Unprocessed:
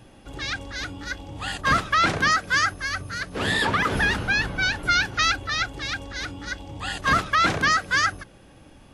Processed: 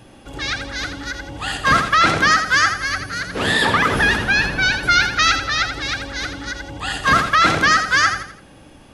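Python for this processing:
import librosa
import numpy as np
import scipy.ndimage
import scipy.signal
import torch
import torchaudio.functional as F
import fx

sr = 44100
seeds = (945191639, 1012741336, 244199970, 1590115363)

p1 = fx.low_shelf(x, sr, hz=120.0, db=-4.5)
p2 = p1 + fx.echo_feedback(p1, sr, ms=83, feedback_pct=37, wet_db=-8, dry=0)
p3 = fx.end_taper(p2, sr, db_per_s=200.0)
y = F.gain(torch.from_numpy(p3), 5.5).numpy()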